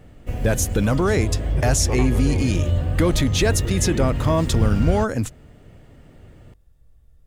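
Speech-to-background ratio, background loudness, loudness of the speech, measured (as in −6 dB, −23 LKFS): 2.0 dB, −24.5 LKFS, −22.5 LKFS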